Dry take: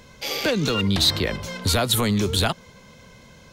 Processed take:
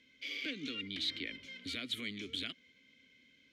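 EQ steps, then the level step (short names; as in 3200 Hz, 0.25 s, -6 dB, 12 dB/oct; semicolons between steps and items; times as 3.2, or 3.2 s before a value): vowel filter i; bell 190 Hz -12.5 dB 2.3 oct; 0.0 dB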